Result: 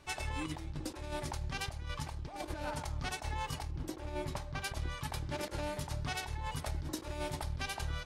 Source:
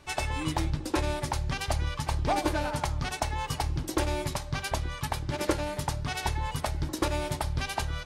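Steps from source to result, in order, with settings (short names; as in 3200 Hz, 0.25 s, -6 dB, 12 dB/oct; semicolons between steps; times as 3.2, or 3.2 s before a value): 3.71–4.62 high shelf 3200 Hz -8.5 dB; negative-ratio compressor -31 dBFS, ratio -0.5; gain -6.5 dB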